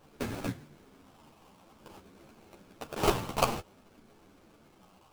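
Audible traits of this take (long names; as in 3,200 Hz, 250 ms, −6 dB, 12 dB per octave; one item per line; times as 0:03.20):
a quantiser's noise floor 10 bits, dither none
phaser sweep stages 6, 0.53 Hz, lowest notch 480–1,100 Hz
aliases and images of a low sample rate 1,900 Hz, jitter 20%
a shimmering, thickened sound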